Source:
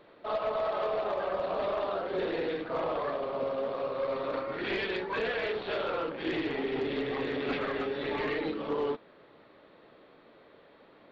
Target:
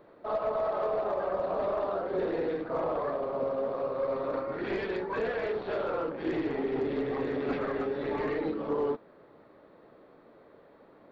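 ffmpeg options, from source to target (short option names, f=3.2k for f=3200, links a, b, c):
-af "equalizer=f=3.2k:w=0.86:g=-12.5,volume=2dB"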